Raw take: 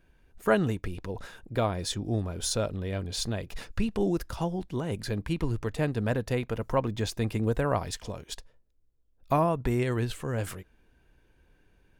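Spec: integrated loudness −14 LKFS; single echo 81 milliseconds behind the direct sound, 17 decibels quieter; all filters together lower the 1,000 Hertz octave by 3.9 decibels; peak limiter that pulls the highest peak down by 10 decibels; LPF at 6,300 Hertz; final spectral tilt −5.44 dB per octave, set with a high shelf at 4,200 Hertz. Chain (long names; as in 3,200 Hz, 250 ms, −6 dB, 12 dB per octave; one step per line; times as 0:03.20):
low-pass filter 6,300 Hz
parametric band 1,000 Hz −5.5 dB
high-shelf EQ 4,200 Hz +5 dB
brickwall limiter −21 dBFS
single-tap delay 81 ms −17 dB
level +19 dB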